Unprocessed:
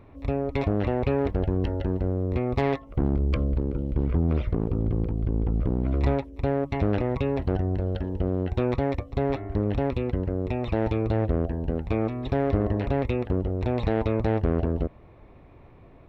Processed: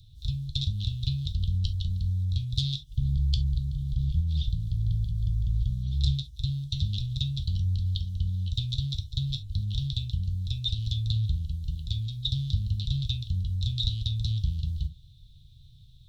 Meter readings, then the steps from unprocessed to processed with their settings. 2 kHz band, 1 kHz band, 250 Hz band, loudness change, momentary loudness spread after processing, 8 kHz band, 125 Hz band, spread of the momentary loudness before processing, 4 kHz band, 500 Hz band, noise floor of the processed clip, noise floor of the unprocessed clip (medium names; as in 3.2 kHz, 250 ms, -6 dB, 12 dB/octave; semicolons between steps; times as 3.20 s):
under -20 dB, under -40 dB, -13.5 dB, -3.0 dB, 4 LU, no reading, 0.0 dB, 3 LU, +14.5 dB, under -40 dB, -52 dBFS, -50 dBFS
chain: Chebyshev band-stop 150–3600 Hz, order 4; resonant high shelf 2.6 kHz +10.5 dB, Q 3; gated-style reverb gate 90 ms falling, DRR 7 dB